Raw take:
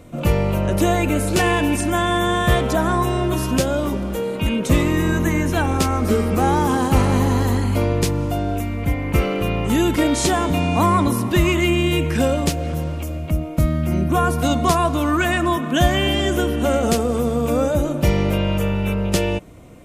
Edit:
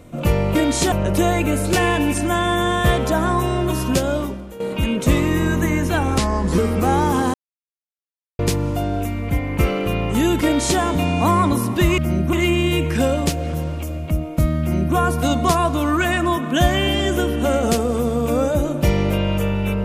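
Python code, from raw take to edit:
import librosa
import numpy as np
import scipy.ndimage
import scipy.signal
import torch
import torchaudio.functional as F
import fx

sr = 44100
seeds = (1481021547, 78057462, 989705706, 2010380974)

y = fx.edit(x, sr, fx.fade_out_to(start_s=3.8, length_s=0.43, curve='qua', floor_db=-12.5),
    fx.speed_span(start_s=5.81, length_s=0.32, speed=0.8),
    fx.silence(start_s=6.89, length_s=1.05),
    fx.duplicate(start_s=9.98, length_s=0.37, to_s=0.55),
    fx.duplicate(start_s=13.8, length_s=0.35, to_s=11.53), tone=tone)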